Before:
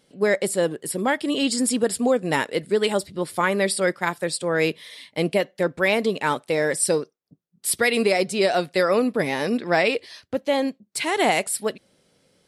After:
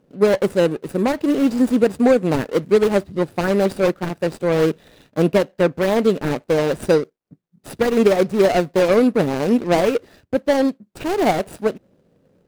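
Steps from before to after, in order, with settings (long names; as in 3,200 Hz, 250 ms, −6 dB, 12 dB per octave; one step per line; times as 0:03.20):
running median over 41 samples
level +7.5 dB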